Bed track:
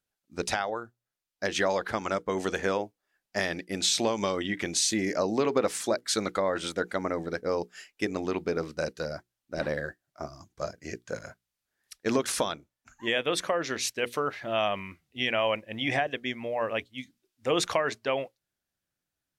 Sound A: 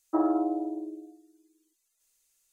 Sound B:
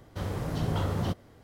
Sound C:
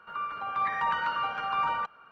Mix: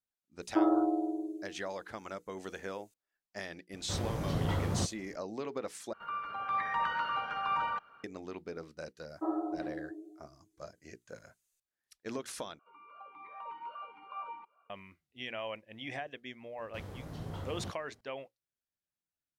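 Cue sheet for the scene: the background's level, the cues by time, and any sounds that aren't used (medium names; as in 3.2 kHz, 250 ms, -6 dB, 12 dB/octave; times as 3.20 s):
bed track -13 dB
0.42 s: add A -1.5 dB
3.73 s: add B -3 dB
5.93 s: replace with C -4 dB
9.08 s: add A -5 dB + detune thickener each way 38 cents
12.59 s: replace with C -5 dB + talking filter a-u 2.5 Hz
16.58 s: add B -12.5 dB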